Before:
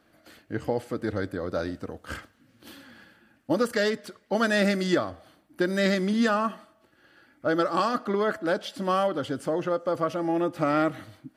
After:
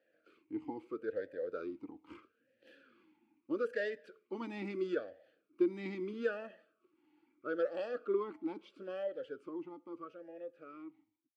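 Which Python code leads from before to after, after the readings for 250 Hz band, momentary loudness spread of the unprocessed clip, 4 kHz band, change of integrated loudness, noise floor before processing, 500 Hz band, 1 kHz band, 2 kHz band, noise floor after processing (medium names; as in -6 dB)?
-13.5 dB, 11 LU, -22.0 dB, -13.0 dB, -64 dBFS, -11.0 dB, -20.5 dB, -15.5 dB, -80 dBFS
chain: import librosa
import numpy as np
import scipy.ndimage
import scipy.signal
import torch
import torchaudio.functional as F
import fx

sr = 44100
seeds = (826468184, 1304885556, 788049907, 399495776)

y = fx.fade_out_tail(x, sr, length_s=3.29)
y = fx.vowel_sweep(y, sr, vowels='e-u', hz=0.77)
y = y * librosa.db_to_amplitude(-1.5)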